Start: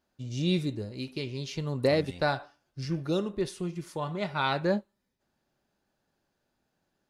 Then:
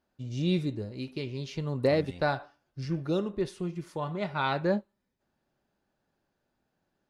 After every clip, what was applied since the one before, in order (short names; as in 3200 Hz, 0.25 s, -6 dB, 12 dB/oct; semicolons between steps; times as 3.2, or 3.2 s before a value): high shelf 3900 Hz -8 dB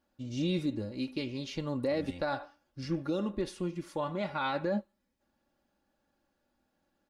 comb 3.6 ms, depth 55%; limiter -23 dBFS, peak gain reduction 10 dB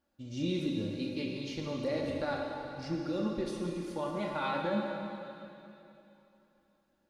plate-style reverb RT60 3 s, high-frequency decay 1×, DRR -0.5 dB; gain -3.5 dB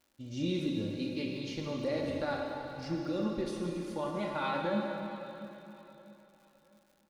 crackle 180/s -55 dBFS; feedback echo 0.662 s, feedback 36%, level -19 dB